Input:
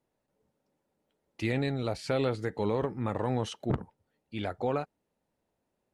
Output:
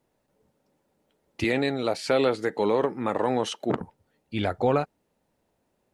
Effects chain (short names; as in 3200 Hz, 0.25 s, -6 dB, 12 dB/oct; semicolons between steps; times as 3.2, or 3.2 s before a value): 1.44–3.81 HPF 260 Hz 12 dB/oct; gain +7.5 dB